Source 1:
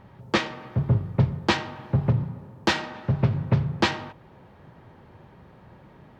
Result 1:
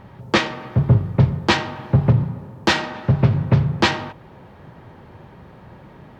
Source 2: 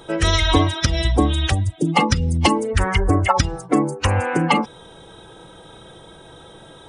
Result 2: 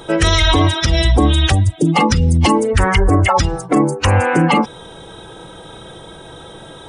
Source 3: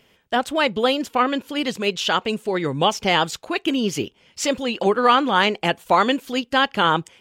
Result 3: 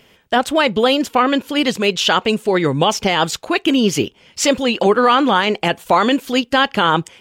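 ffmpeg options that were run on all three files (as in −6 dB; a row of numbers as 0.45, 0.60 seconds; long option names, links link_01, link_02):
-af "alimiter=limit=-11dB:level=0:latency=1:release=20,volume=7dB"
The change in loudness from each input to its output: +6.5, +5.0, +4.5 LU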